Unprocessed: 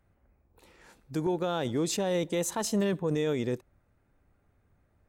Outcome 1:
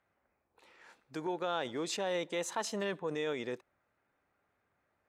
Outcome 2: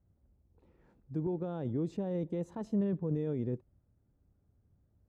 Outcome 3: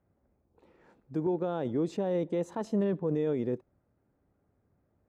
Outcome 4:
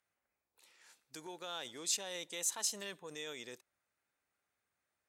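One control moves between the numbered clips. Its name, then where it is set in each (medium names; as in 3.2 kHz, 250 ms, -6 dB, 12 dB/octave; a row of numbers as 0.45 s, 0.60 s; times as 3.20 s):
band-pass filter, frequency: 1.7 kHz, 100 Hz, 310 Hz, 7.1 kHz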